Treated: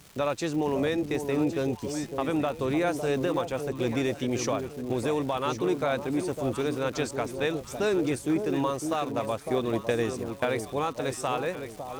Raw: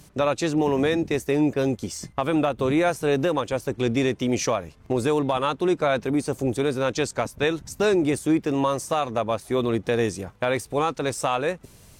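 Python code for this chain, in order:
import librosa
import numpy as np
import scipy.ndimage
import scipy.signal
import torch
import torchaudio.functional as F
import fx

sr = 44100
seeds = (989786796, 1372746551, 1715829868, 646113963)

y = fx.echo_alternate(x, sr, ms=555, hz=860.0, feedback_pct=58, wet_db=-6.5)
y = fx.dmg_crackle(y, sr, seeds[0], per_s=510.0, level_db=-34.0)
y = fx.transient(y, sr, attack_db=4, sustain_db=-2, at=(9.38, 10.45), fade=0.02)
y = F.gain(torch.from_numpy(y), -5.5).numpy()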